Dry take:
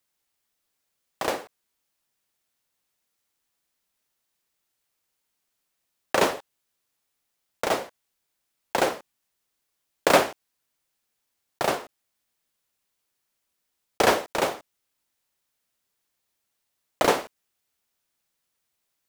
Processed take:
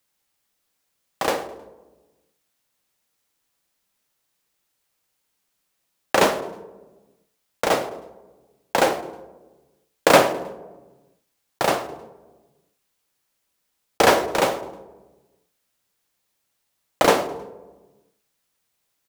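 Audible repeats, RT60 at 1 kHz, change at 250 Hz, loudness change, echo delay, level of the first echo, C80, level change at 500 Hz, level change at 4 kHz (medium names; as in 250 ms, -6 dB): 2, 1.1 s, +5.0 dB, +4.0 dB, 105 ms, -19.5 dB, 14.5 dB, +5.0 dB, +4.0 dB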